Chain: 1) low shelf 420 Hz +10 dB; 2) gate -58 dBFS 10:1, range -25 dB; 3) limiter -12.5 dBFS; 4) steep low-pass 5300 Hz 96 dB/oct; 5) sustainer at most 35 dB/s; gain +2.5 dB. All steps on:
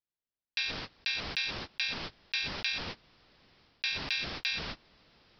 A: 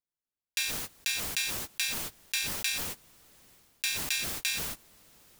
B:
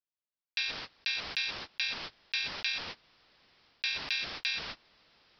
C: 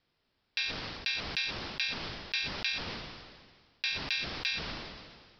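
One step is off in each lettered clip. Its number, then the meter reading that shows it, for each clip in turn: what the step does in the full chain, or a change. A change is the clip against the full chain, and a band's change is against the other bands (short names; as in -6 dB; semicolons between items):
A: 4, crest factor change +5.0 dB; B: 1, 125 Hz band -7.5 dB; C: 2, momentary loudness spread change +5 LU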